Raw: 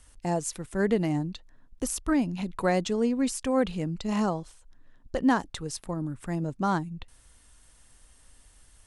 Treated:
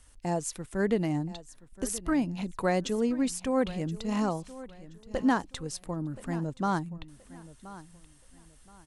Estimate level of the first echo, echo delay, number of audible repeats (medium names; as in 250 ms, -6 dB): -17.0 dB, 1025 ms, 2